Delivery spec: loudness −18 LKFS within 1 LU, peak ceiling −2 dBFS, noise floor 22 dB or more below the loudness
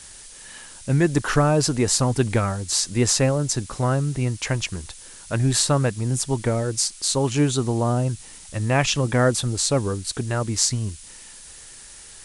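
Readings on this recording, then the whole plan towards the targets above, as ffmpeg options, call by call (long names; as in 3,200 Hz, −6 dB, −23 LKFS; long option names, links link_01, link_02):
background noise floor −43 dBFS; target noise floor −44 dBFS; integrated loudness −22.0 LKFS; sample peak −3.5 dBFS; target loudness −18.0 LKFS
→ -af "afftdn=noise_reduction=6:noise_floor=-43"
-af "volume=4dB,alimiter=limit=-2dB:level=0:latency=1"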